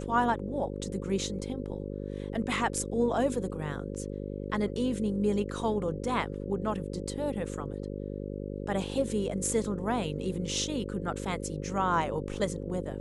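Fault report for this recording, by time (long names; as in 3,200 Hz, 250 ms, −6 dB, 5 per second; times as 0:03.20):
mains buzz 50 Hz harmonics 11 −37 dBFS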